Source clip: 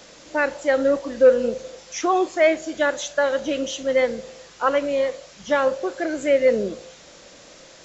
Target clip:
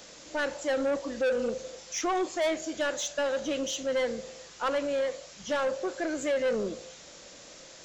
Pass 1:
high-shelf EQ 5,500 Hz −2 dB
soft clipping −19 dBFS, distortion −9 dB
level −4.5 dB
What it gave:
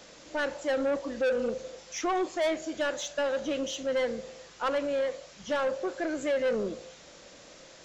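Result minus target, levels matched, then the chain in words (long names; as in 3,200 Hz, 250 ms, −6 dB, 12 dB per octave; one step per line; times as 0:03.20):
8,000 Hz band −4.5 dB
high-shelf EQ 5,500 Hz +7 dB
soft clipping −19 dBFS, distortion −8 dB
level −4.5 dB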